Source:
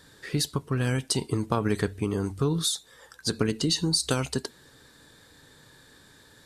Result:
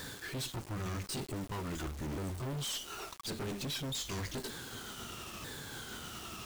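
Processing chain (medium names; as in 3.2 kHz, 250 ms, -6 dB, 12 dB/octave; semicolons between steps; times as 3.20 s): sawtooth pitch modulation -6 st, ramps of 1088 ms; reverse; compression 4:1, threshold -37 dBFS, peak gain reduction 15 dB; reverse; valve stage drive 49 dB, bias 0.4; bit crusher 10-bit; trim +12 dB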